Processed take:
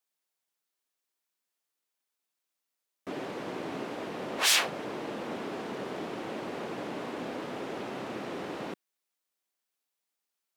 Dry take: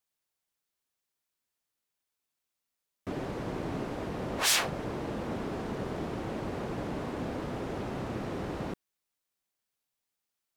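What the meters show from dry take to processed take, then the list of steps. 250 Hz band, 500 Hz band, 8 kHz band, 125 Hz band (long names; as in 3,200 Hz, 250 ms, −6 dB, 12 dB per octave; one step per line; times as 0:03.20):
−2.5 dB, 0.0 dB, +0.5 dB, −10.0 dB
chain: dynamic equaliser 2,900 Hz, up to +4 dB, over −51 dBFS, Q 0.99
high-pass filter 240 Hz 12 dB per octave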